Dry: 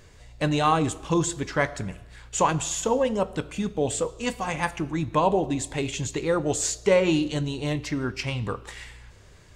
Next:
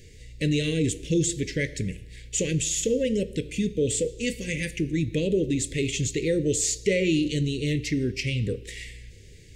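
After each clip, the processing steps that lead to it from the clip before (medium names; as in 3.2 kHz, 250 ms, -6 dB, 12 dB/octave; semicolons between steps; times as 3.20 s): elliptic band-stop 480–2000 Hz, stop band 40 dB; in parallel at +3 dB: peak limiter -21 dBFS, peak gain reduction 10.5 dB; on the sum: trim -4 dB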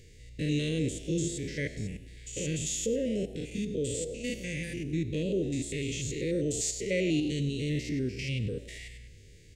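spectrogram pixelated in time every 100 ms; frequency-shifting echo 99 ms, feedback 36%, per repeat +80 Hz, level -20 dB; trim -4 dB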